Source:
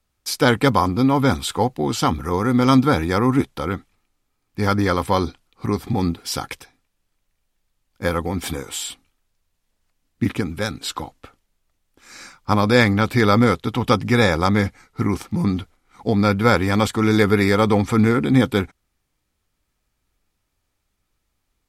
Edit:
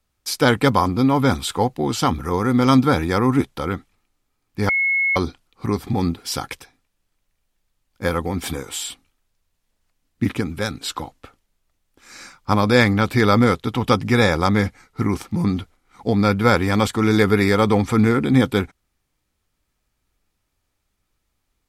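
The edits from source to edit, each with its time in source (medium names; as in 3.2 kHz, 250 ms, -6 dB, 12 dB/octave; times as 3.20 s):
4.69–5.16 s: bleep 2.18 kHz -16 dBFS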